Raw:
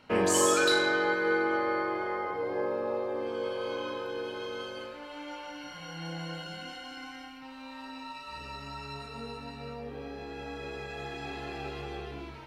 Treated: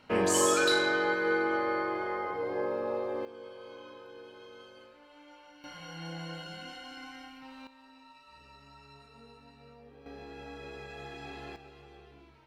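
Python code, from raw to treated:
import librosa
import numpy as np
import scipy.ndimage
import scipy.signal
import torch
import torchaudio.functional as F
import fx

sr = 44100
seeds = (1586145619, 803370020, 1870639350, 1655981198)

y = fx.gain(x, sr, db=fx.steps((0.0, -1.0), (3.25, -13.0), (5.64, -2.5), (7.67, -13.5), (10.06, -5.0), (11.56, -14.5)))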